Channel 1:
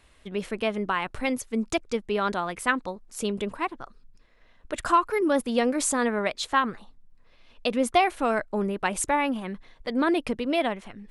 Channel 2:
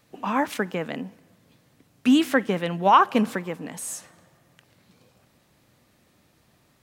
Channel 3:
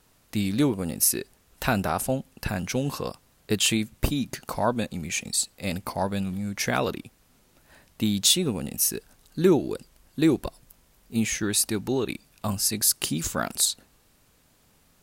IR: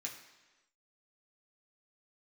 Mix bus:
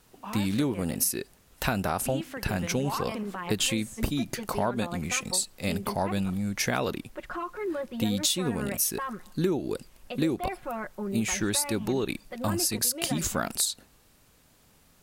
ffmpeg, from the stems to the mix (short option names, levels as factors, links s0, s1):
-filter_complex "[0:a]lowpass=2600,aecho=1:1:5.5:0.94,adelay=2450,volume=0.355,asplit=2[s0][s1];[s1]volume=0.0891[s2];[1:a]acrusher=bits=9:mix=0:aa=0.000001,volume=0.266[s3];[2:a]volume=1.12[s4];[s0][s3]amix=inputs=2:normalize=0,alimiter=level_in=1.19:limit=0.0631:level=0:latency=1:release=72,volume=0.841,volume=1[s5];[3:a]atrim=start_sample=2205[s6];[s2][s6]afir=irnorm=-1:irlink=0[s7];[s4][s5][s7]amix=inputs=3:normalize=0,acompressor=threshold=0.0708:ratio=6"